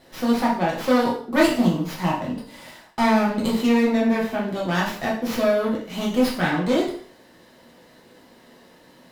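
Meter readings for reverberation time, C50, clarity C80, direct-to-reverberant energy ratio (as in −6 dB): 0.50 s, 5.5 dB, 10.0 dB, −4.5 dB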